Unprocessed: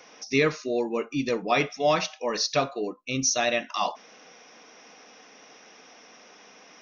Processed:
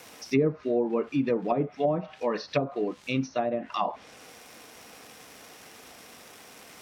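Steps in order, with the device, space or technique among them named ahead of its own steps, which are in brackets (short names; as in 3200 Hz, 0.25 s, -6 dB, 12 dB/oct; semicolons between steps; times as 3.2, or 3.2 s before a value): 78 rpm shellac record (BPF 130–5500 Hz; crackle 320/s -38 dBFS; white noise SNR 24 dB); HPF 81 Hz; treble ducked by the level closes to 500 Hz, closed at -20 dBFS; low shelf 170 Hz +8 dB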